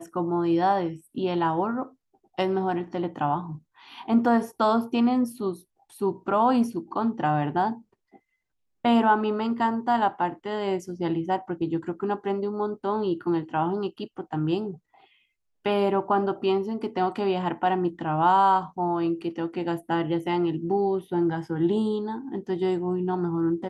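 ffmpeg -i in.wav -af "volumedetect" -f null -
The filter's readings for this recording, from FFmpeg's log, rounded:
mean_volume: -25.8 dB
max_volume: -9.0 dB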